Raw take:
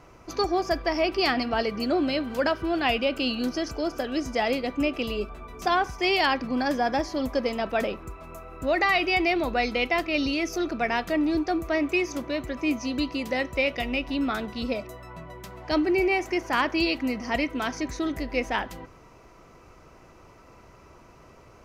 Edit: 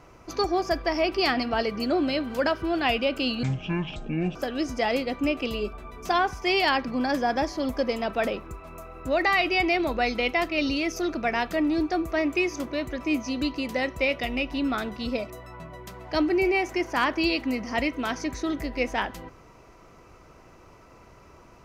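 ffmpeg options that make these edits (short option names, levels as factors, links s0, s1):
-filter_complex "[0:a]asplit=3[s0][s1][s2];[s0]atrim=end=3.434[s3];[s1]atrim=start=3.43:end=3.92,asetpts=PTS-STARTPTS,asetrate=23373,aresample=44100[s4];[s2]atrim=start=3.916[s5];[s3][s4]acrossfade=d=0.004:c1=hsin:c2=hsin[s6];[s6][s5]acrossfade=d=0.004:c1=hsin:c2=hsin"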